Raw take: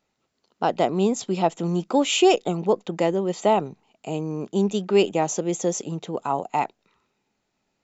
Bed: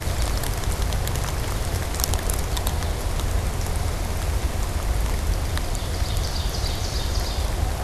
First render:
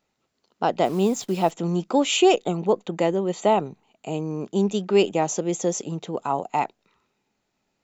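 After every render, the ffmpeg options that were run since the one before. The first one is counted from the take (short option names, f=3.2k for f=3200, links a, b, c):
-filter_complex "[0:a]asplit=3[a][b][c];[a]afade=t=out:st=0.84:d=0.02[d];[b]acrusher=bits=8:dc=4:mix=0:aa=0.000001,afade=t=in:st=0.84:d=0.02,afade=t=out:st=1.5:d=0.02[e];[c]afade=t=in:st=1.5:d=0.02[f];[d][e][f]amix=inputs=3:normalize=0,asettb=1/sr,asplit=3[g][h][i];[g]atrim=end=2.174[j];[h]atrim=start=2.17:end=4.2,asetpts=PTS-STARTPTS,afade=t=in:d=0.004:c=qsin,afade=t=out:st=2.026:d=0.004:c=qsin,bandreject=f=5.2k:w=6.5[k];[i]atrim=start=4.196[l];[j][k]acrossfade=d=0.004:c1=hsin:c2=qsin[m];[m][l]acrossfade=d=0.004:c1=qsin:c2=hsin"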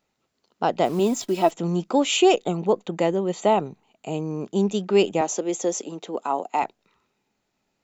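-filter_complex "[0:a]asettb=1/sr,asplit=3[a][b][c];[a]atrim=end=0.994[d];[b]atrim=start=0.99:end=1.51,asetpts=PTS-STARTPTS,afade=t=in:d=0.004:c=qsin,afade=t=out:st=0.516:d=0.004:c=qsin,aecho=1:1:3.1:0.57,atrim=end_sample=22932[e];[c]atrim=start=1.506[f];[d][e]acrossfade=d=0.004:c1=hsin:c2=qsin[g];[g][f]acrossfade=d=0.004:c1=qsin:c2=hsin,asettb=1/sr,asplit=3[h][i][j];[h]atrim=end=5.214[k];[i]atrim=start=5.21:end=6.63,asetpts=PTS-STARTPTS,afade=t=in:d=0.004:c=qsin,afade=t=out:st=1.416:d=0.004:c=qsin,highpass=f=230:w=0.5412,highpass=f=230:w=1.3066[l];[j]atrim=start=6.626[m];[k][l]acrossfade=d=0.004:c1=hsin:c2=qsin[n];[n][m]acrossfade=d=0.004:c1=qsin:c2=hsin"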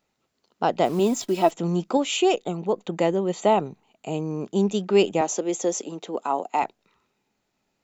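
-filter_complex "[0:a]asplit=3[a][b][c];[a]atrim=end=1.972[d];[b]atrim=start=1.968:end=2.782,asetpts=PTS-STARTPTS,volume=-3.5dB[e];[c]atrim=start=2.778[f];[d][e]acrossfade=d=0.004:c1=hsin:c2=hsin[g];[g][f]acrossfade=d=0.004:c1=hsin:c2=hsin"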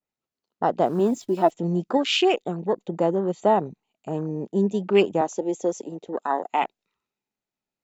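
-af "afwtdn=0.0251,adynamicequalizer=threshold=0.0126:dfrequency=1700:dqfactor=0.7:tfrequency=1700:tqfactor=0.7:attack=5:release=100:ratio=0.375:range=3:mode=boostabove:tftype=highshelf"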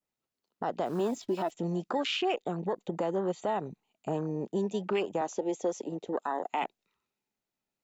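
-filter_complex "[0:a]acrossover=split=560|1500|5700[a][b][c][d];[a]acompressor=threshold=-32dB:ratio=4[e];[b]acompressor=threshold=-28dB:ratio=4[f];[c]acompressor=threshold=-34dB:ratio=4[g];[d]acompressor=threshold=-56dB:ratio=4[h];[e][f][g][h]amix=inputs=4:normalize=0,alimiter=limit=-21dB:level=0:latency=1:release=56"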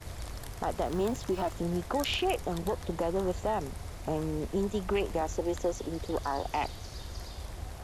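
-filter_complex "[1:a]volume=-16.5dB[a];[0:a][a]amix=inputs=2:normalize=0"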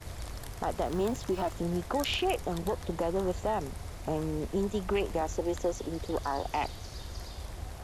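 -af anull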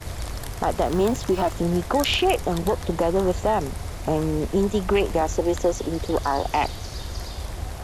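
-af "volume=9dB"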